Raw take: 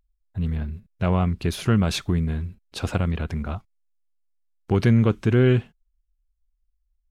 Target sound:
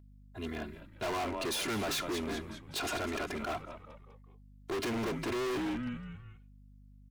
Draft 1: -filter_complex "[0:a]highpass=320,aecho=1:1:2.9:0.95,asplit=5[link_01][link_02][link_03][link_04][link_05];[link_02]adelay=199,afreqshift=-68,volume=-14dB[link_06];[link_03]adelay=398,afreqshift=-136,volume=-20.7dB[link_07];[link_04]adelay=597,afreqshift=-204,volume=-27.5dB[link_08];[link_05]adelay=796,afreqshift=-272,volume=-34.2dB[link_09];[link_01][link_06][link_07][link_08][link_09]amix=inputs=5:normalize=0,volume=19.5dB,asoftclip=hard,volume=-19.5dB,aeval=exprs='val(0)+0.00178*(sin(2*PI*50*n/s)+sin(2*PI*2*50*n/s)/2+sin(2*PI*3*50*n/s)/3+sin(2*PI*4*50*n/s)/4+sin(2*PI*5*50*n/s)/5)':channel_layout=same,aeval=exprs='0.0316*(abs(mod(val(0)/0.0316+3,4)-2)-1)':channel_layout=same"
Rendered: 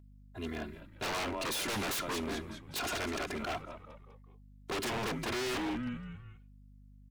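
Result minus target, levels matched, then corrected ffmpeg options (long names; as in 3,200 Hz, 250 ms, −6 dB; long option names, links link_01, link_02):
gain into a clipping stage and back: distortion −6 dB
-filter_complex "[0:a]highpass=320,aecho=1:1:2.9:0.95,asplit=5[link_01][link_02][link_03][link_04][link_05];[link_02]adelay=199,afreqshift=-68,volume=-14dB[link_06];[link_03]adelay=398,afreqshift=-136,volume=-20.7dB[link_07];[link_04]adelay=597,afreqshift=-204,volume=-27.5dB[link_08];[link_05]adelay=796,afreqshift=-272,volume=-34.2dB[link_09];[link_01][link_06][link_07][link_08][link_09]amix=inputs=5:normalize=0,volume=28dB,asoftclip=hard,volume=-28dB,aeval=exprs='val(0)+0.00178*(sin(2*PI*50*n/s)+sin(2*PI*2*50*n/s)/2+sin(2*PI*3*50*n/s)/3+sin(2*PI*4*50*n/s)/4+sin(2*PI*5*50*n/s)/5)':channel_layout=same,aeval=exprs='0.0316*(abs(mod(val(0)/0.0316+3,4)-2)-1)':channel_layout=same"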